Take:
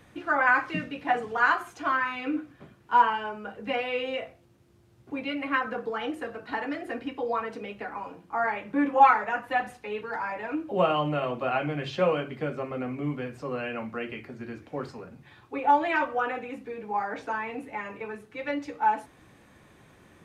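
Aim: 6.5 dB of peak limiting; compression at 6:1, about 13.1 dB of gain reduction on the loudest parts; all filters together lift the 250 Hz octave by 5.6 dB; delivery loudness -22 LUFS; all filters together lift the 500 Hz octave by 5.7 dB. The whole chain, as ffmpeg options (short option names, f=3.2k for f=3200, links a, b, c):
-af "equalizer=f=250:t=o:g=5,equalizer=f=500:t=o:g=5.5,acompressor=threshold=-24dB:ratio=6,volume=9.5dB,alimiter=limit=-11.5dB:level=0:latency=1"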